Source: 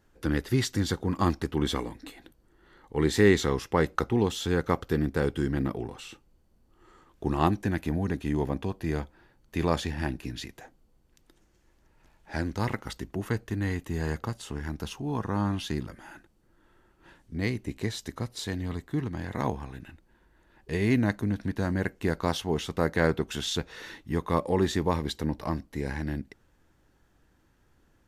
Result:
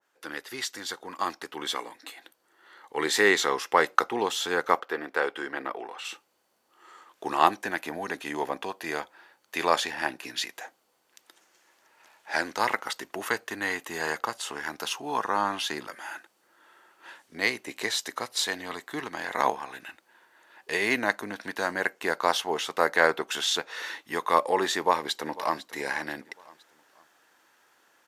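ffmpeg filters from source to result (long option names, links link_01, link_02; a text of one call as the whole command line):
ffmpeg -i in.wav -filter_complex "[0:a]asplit=3[link_01][link_02][link_03];[link_01]afade=type=out:start_time=4.79:duration=0.02[link_04];[link_02]bass=frequency=250:gain=-12,treble=frequency=4000:gain=-12,afade=type=in:start_time=4.79:duration=0.02,afade=type=out:start_time=6.04:duration=0.02[link_05];[link_03]afade=type=in:start_time=6.04:duration=0.02[link_06];[link_04][link_05][link_06]amix=inputs=3:normalize=0,asplit=2[link_07][link_08];[link_08]afade=type=in:start_time=24.75:duration=0.01,afade=type=out:start_time=25.56:duration=0.01,aecho=0:1:500|1000|1500:0.133352|0.0533409|0.0213363[link_09];[link_07][link_09]amix=inputs=2:normalize=0,highpass=730,dynaudnorm=framelen=890:gausssize=5:maxgain=10.5dB,adynamicequalizer=threshold=0.0158:dfrequency=1800:dqfactor=0.7:tfrequency=1800:tqfactor=0.7:attack=5:release=100:ratio=0.375:range=2.5:mode=cutabove:tftype=highshelf" out.wav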